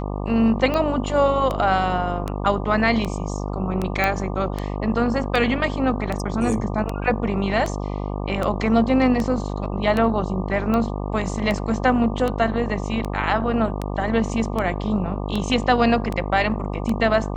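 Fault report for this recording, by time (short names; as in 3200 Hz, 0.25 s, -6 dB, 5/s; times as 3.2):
buzz 50 Hz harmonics 24 -27 dBFS
tick 78 rpm -12 dBFS
4.04 pop -7 dBFS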